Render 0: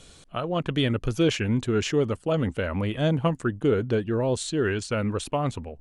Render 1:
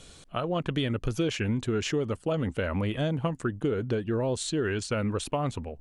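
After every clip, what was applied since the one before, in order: compression, threshold -24 dBFS, peak gain reduction 7.5 dB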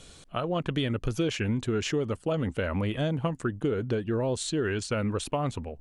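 no audible change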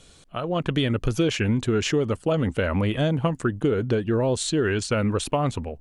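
level rider gain up to 7.5 dB; trim -2 dB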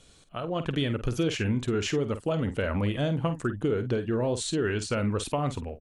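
doubling 49 ms -11 dB; trim -5 dB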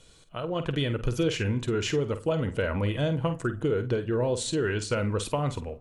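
reverberation RT60 0.95 s, pre-delay 6 ms, DRR 14 dB

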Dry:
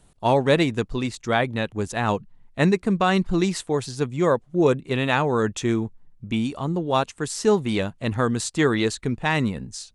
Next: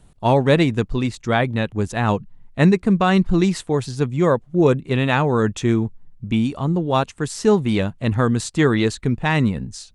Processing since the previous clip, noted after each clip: tone controls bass +5 dB, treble -3 dB; trim +2 dB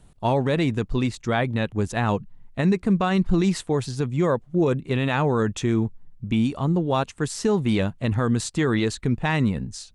peak limiter -10.5 dBFS, peak gain reduction 9 dB; trim -1.5 dB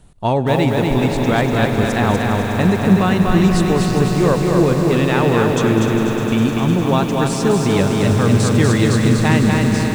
echo with a slow build-up 101 ms, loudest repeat 5, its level -12 dB; bit-crushed delay 243 ms, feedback 35%, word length 7-bit, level -3 dB; trim +4.5 dB

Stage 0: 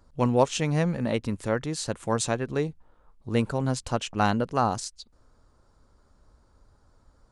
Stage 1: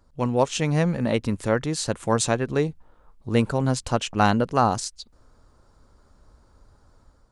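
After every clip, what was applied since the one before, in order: level rider gain up to 6 dB; trim -1.5 dB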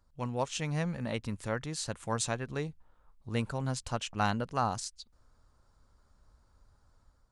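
peaking EQ 360 Hz -6.5 dB 1.8 oct; trim -8 dB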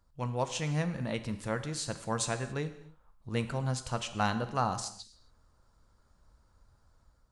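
gated-style reverb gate 300 ms falling, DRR 9 dB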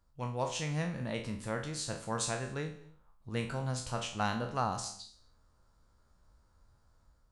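spectral sustain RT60 0.41 s; trim -3.5 dB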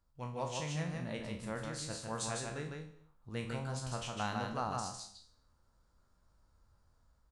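delay 153 ms -3.5 dB; trim -5 dB

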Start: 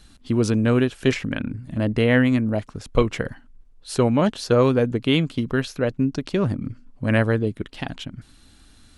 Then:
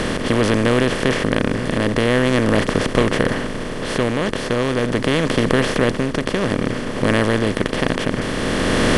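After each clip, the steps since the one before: spectral levelling over time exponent 0.2; level rider; trim -1 dB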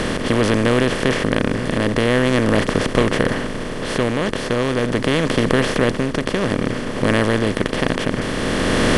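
no audible change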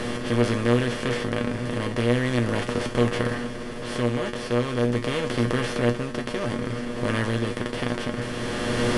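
feedback comb 120 Hz, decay 0.2 s, harmonics all, mix 90%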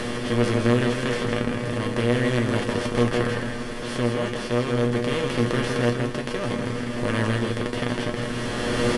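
delay 163 ms -5 dB; tape noise reduction on one side only encoder only

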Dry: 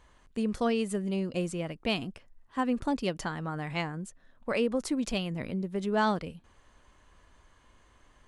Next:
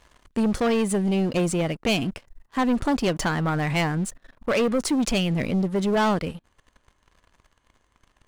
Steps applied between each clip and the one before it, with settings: in parallel at -3 dB: gain riding within 5 dB 0.5 s; on the sum: waveshaping leveller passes 3; trim -4.5 dB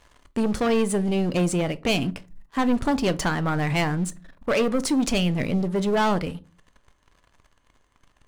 simulated room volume 140 m³, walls furnished, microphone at 0.31 m

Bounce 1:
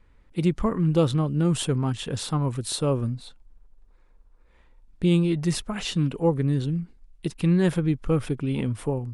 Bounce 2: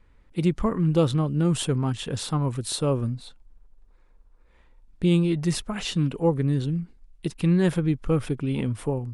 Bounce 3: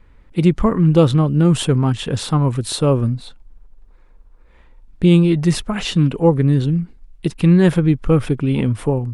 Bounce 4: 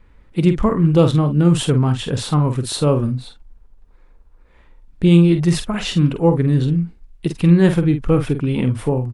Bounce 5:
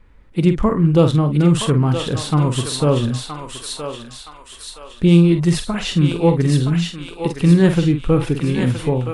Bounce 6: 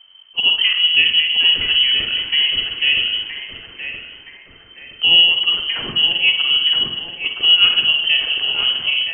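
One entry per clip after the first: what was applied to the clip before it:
no audible change
tone controls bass +1 dB, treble -4 dB; trim +8 dB
doubling 47 ms -8.5 dB; trim -1 dB
thinning echo 970 ms, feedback 54%, high-pass 1 kHz, level -3 dB
reverberation RT60 1.1 s, pre-delay 54 ms, DRR 6 dB; frequency inversion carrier 3.1 kHz; trim -2 dB

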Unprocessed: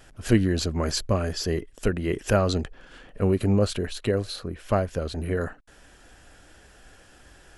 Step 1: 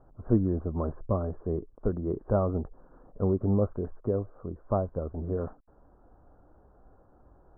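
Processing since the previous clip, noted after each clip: steep low-pass 1.2 kHz 48 dB/octave; trim -4 dB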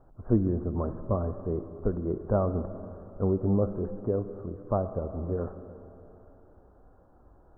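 reverberation RT60 3.2 s, pre-delay 10 ms, DRR 10 dB

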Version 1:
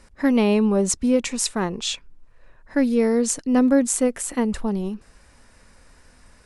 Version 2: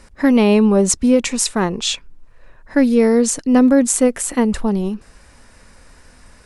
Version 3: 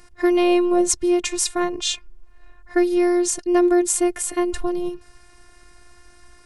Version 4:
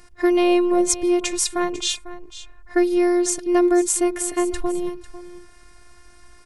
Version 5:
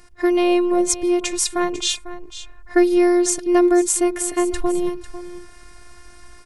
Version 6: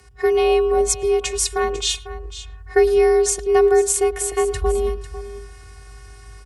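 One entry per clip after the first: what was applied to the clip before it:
loudness maximiser +8.5 dB; trim -2.5 dB
robot voice 354 Hz; trim -1 dB
delay 498 ms -15.5 dB
level rider gain up to 5 dB
frequency shift +50 Hz; speakerphone echo 110 ms, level -20 dB

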